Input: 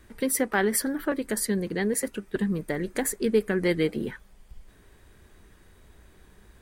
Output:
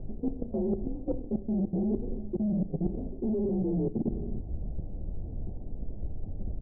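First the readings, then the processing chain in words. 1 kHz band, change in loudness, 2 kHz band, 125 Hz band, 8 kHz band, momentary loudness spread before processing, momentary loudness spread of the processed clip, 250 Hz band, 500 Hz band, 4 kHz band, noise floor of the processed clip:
−14.0 dB, −6.0 dB, below −40 dB, +2.0 dB, below −40 dB, 6 LU, 12 LU, −1.0 dB, −7.0 dB, below −40 dB, −40 dBFS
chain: partials spread apart or drawn together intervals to 86%
high-pass filter 93 Hz 6 dB per octave
spectral tilt −4 dB per octave
comb filter 5.4 ms, depth 47%
four-comb reverb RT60 0.72 s, combs from 30 ms, DRR 6 dB
output level in coarse steps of 23 dB
leveller curve on the samples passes 3
background noise brown −36 dBFS
Butterworth low-pass 740 Hz 48 dB per octave
low-shelf EQ 260 Hz +7 dB
reversed playback
downward compressor 6 to 1, threshold −25 dBFS, peak gain reduction 12 dB
reversed playback
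level −2.5 dB

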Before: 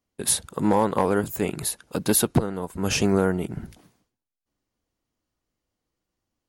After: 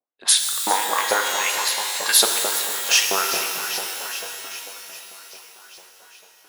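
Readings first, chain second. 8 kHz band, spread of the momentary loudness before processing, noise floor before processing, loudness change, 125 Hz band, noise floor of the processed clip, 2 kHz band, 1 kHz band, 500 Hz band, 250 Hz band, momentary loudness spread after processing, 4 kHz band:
+8.5 dB, 9 LU, −85 dBFS, +4.5 dB, below −25 dB, −53 dBFS, +11.5 dB, +4.5 dB, −5.0 dB, −16.5 dB, 17 LU, +14.0 dB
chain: low-pass that shuts in the quiet parts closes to 450 Hz, open at −21.5 dBFS
parametric band 4,300 Hz +7.5 dB 2 octaves
delay that swaps between a low-pass and a high-pass 200 ms, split 930 Hz, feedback 82%, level −11 dB
tape wow and flutter 63 cents
auto-filter high-pass saw up 4.5 Hz 570–4,800 Hz
reverb with rising layers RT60 2.5 s, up +12 semitones, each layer −2 dB, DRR 4 dB
level +2 dB

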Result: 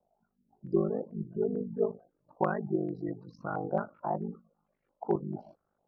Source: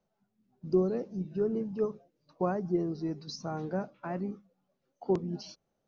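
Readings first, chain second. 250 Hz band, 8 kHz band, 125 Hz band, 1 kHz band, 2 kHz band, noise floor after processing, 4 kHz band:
−1.5 dB, can't be measured, −1.0 dB, +4.0 dB, +4.0 dB, −81 dBFS, below −20 dB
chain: ring modulation 25 Hz
gate on every frequency bin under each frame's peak −30 dB strong
low-pass on a step sequencer 4.5 Hz 730–2,100 Hz
level +1 dB

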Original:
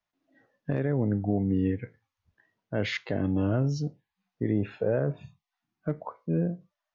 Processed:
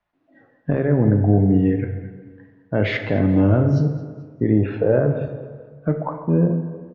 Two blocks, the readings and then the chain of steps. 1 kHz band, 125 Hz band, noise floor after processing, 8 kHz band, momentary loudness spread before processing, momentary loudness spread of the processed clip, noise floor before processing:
+10.0 dB, +11.0 dB, −61 dBFS, can't be measured, 10 LU, 14 LU, below −85 dBFS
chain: Bessel low-pass filter 1,900 Hz, order 2
in parallel at −2 dB: brickwall limiter −25 dBFS, peak gain reduction 8 dB
on the sum: repeating echo 217 ms, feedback 40%, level −18 dB
dense smooth reverb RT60 1.5 s, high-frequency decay 0.55×, DRR 5.5 dB
level +6 dB

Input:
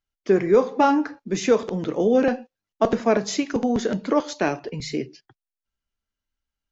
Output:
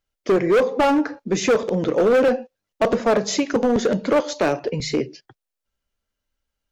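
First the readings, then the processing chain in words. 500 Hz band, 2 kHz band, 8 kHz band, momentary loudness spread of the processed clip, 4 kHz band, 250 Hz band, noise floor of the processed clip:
+3.0 dB, +4.5 dB, can't be measured, 7 LU, +4.0 dB, +1.0 dB, −84 dBFS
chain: parametric band 530 Hz +7.5 dB 0.52 octaves
in parallel at −2 dB: downward compressor 12 to 1, threshold −23 dBFS, peak gain reduction 17 dB
on the sum: gain into a clipping stage and back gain 13 dB

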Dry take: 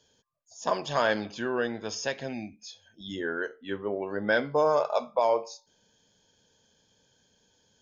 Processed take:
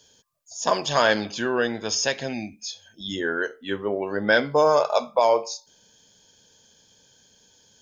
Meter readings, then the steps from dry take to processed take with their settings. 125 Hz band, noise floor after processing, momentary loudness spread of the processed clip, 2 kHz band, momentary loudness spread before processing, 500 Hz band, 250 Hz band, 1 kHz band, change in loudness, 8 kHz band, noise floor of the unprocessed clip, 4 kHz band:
+5.0 dB, −59 dBFS, 15 LU, +6.5 dB, 17 LU, +5.0 dB, +5.0 dB, +5.5 dB, +5.5 dB, can't be measured, −69 dBFS, +10.0 dB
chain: high-shelf EQ 3,600 Hz +9 dB
level +5 dB

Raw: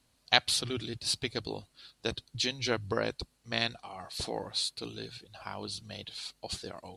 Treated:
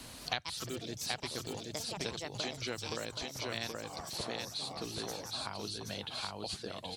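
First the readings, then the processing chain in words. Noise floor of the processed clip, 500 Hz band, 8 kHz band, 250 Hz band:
−49 dBFS, −4.5 dB, −3.0 dB, −4.0 dB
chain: delay with pitch and tempo change per echo 210 ms, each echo +5 semitones, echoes 2, each echo −6 dB
single-tap delay 774 ms −5 dB
multiband upward and downward compressor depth 100%
level −7.5 dB

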